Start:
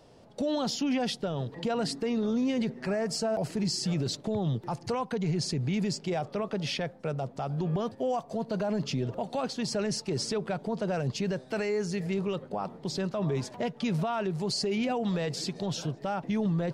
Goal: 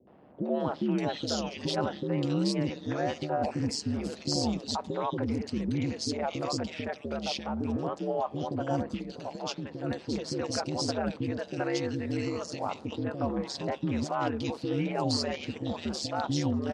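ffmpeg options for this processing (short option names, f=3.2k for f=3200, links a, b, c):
-filter_complex "[0:a]asettb=1/sr,asplit=3[a][b][c];[a]atrim=end=8.944[d];[b]atrim=start=8.94:end=9.84,asetpts=PTS-STARTPTS,afade=t=in:d=0.004:c=qsin,afade=t=out:st=0.896:d=0.004:c=qsin,acompressor=threshold=-33dB:ratio=6[e];[c]atrim=start=9.836[f];[d][e]acrossfade=d=0.004:c1=hsin:c2=qsin[g];[g][f]acrossfade=d=0.004:c1=qsin:c2=hsin,aeval=exprs='val(0)*sin(2*PI*72*n/s)':c=same,highpass=130,lowpass=7k,acrossover=split=430|2400[h][i][j];[i]adelay=70[k];[j]adelay=600[l];[h][k][l]amix=inputs=3:normalize=0,volume=4.5dB"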